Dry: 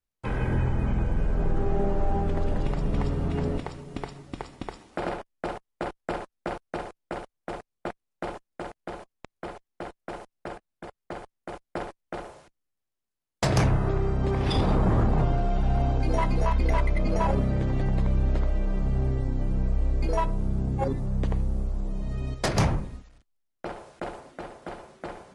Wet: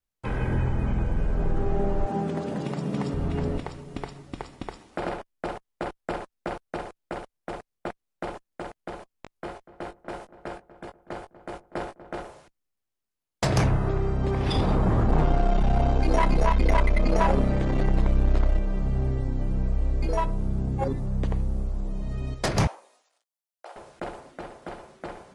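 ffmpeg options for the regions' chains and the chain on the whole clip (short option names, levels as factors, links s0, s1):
-filter_complex "[0:a]asettb=1/sr,asplit=3[s0][s1][s2];[s0]atrim=end=2.064[s3];[s1]atrim=start=2.06:end=3.14,asetpts=PTS-STARTPTS,afade=t=in:d=0.004:c=qsin,afade=t=out:st=1.076:d=0.004:c=qsin,highpass=f=160:w=0.5412,highpass=f=160:w=1.3066,bass=f=250:g=6,treble=f=4000:g=5[s4];[s2]atrim=start=3.136[s5];[s3][s4]acrossfade=d=0.004:c1=hsin:c2=qsin[s6];[s6][s5]acrossfade=d=0.004:c1=qsin:c2=hsin,asettb=1/sr,asplit=3[s7][s8][s9];[s7]atrim=end=9.124[s10];[s8]atrim=start=9.12:end=12.23,asetpts=PTS-STARTPTS,afade=t=in:d=0.004:c=qsin,afade=t=out:st=3.106:d=0.004:c=qsin,asplit=2[s11][s12];[s12]adelay=20,volume=0.447[s13];[s11][s13]amix=inputs=2:normalize=0,atrim=end_sample=137151,asplit=2[s14][s15];[s15]adelay=242,lowpass=f=1300:p=1,volume=0.188,asplit=2[s16][s17];[s17]adelay=242,lowpass=f=1300:p=1,volume=0.43,asplit=2[s18][s19];[s19]adelay=242,lowpass=f=1300:p=1,volume=0.43,asplit=2[s20][s21];[s21]adelay=242,lowpass=f=1300:p=1,volume=0.43[s22];[s14][s16][s18][s20][s22]amix=inputs=5:normalize=0,atrim=end_sample=137151[s23];[s9]atrim=start=12.226[s24];[s10][s23]acrossfade=d=0.004:c1=hsin:c2=qsin[s25];[s25][s24]acrossfade=d=0.004:c1=qsin:c2=hsin,asettb=1/sr,asplit=3[s26][s27][s28];[s26]atrim=end=15.094[s29];[s27]atrim=start=15.09:end=18.59,asetpts=PTS-STARTPTS,afade=t=in:d=0.004:c=qsin,afade=t=out:st=3.496:d=0.004:c=qsin,acontrast=70,aeval=exprs='(tanh(3.98*val(0)+0.45)-tanh(0.45))/3.98':c=same,equalizer=f=100:w=2.7:g=-13.5[s30];[s28]atrim=start=18.586[s31];[s29][s30]acrossfade=d=0.004:c1=hsin:c2=qsin[s32];[s32][s31]acrossfade=d=0.004:c1=qsin:c2=hsin,asettb=1/sr,asplit=3[s33][s34][s35];[s33]atrim=end=22.674[s36];[s34]atrim=start=22.67:end=23.76,asetpts=PTS-STARTPTS,afade=t=in:d=0.004:c=qsin,afade=t=out:st=1.086:d=0.004:c=qsin,highpass=f=630:w=0.5412,highpass=f=630:w=1.3066,equalizer=f=1800:w=0.5:g=-9.5,asplit=2[s37][s38];[s38]adelay=18,volume=0.335[s39];[s37][s39]amix=inputs=2:normalize=0,atrim=end_sample=48069[s40];[s35]atrim=start=23.756[s41];[s36][s40]acrossfade=d=0.004:c1=hsin:c2=qsin[s42];[s42][s41]acrossfade=d=0.004:c1=qsin:c2=hsin"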